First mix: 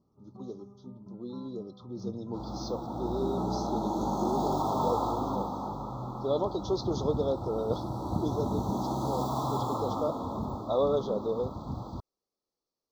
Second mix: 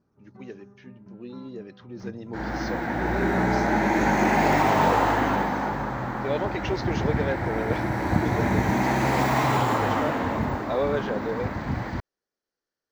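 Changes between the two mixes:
second sound +8.0 dB
master: remove Chebyshev band-stop filter 1,300–3,400 Hz, order 5

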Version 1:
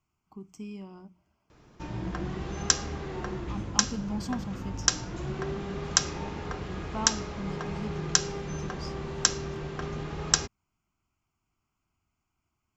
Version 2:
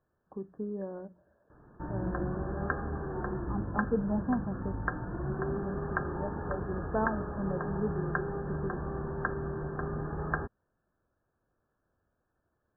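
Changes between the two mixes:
speech: remove phaser with its sweep stopped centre 2,600 Hz, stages 8
master: add linear-phase brick-wall low-pass 1,800 Hz

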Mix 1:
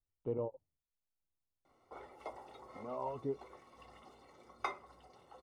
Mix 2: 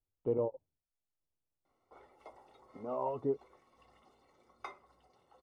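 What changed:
speech: add parametric band 460 Hz +5.5 dB 2.7 octaves
background −7.5 dB

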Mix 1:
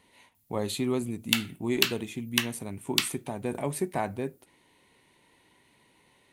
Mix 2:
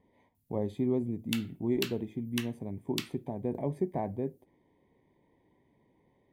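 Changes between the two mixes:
speech: add moving average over 32 samples
background −11.5 dB

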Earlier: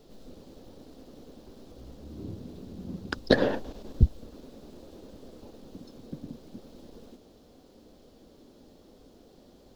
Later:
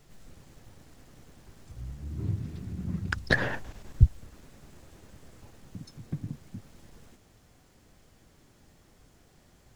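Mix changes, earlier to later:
background +8.5 dB
master: add octave-band graphic EQ 125/250/500/2,000/4,000/8,000 Hz +7/−10/−10/+9/−8/+7 dB

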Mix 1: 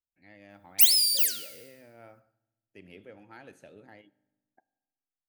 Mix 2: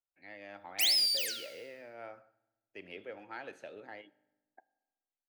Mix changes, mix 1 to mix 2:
speech +6.0 dB
master: add three-way crossover with the lows and the highs turned down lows −14 dB, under 350 Hz, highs −15 dB, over 5,500 Hz

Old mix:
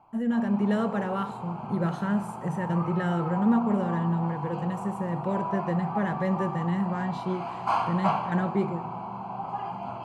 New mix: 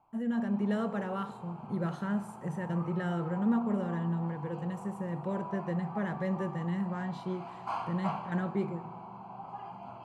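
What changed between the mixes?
speech −5.5 dB
background −10.0 dB

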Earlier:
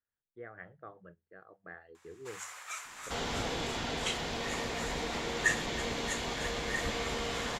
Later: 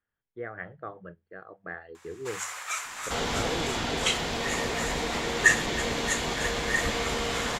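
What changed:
speech +9.5 dB
first sound +9.0 dB
second sound +5.5 dB

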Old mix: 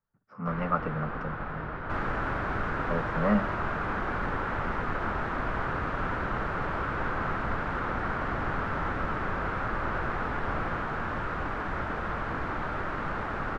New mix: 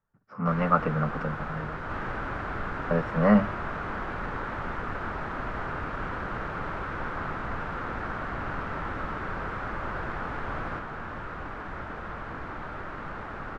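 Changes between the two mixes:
speech +5.5 dB
first sound: remove high-frequency loss of the air 200 metres
second sound −5.0 dB

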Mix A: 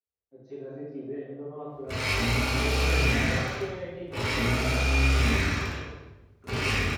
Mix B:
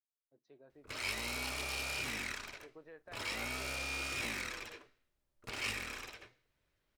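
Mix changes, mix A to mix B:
background: entry −1.00 s
reverb: off

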